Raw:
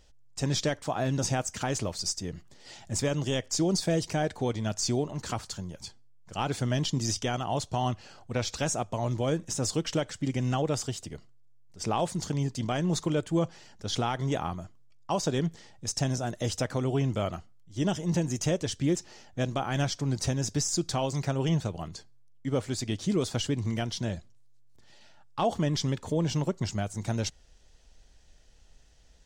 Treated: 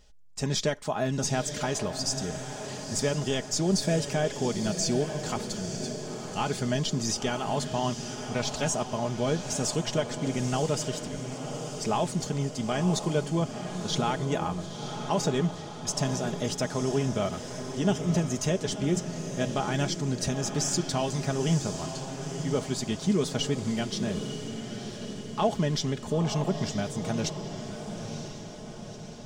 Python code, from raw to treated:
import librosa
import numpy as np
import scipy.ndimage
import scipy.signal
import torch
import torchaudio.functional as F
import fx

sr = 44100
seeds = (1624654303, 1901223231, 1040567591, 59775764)

p1 = x + 0.49 * np.pad(x, (int(4.8 * sr / 1000.0), 0))[:len(x)]
y = p1 + fx.echo_diffused(p1, sr, ms=962, feedback_pct=57, wet_db=-8.0, dry=0)